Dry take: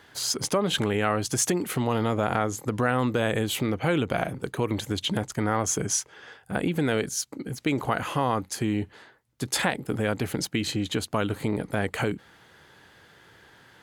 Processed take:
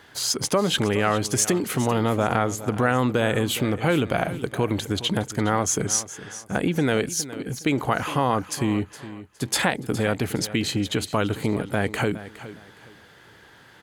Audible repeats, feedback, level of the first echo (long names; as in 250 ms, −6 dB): 2, 26%, −15.0 dB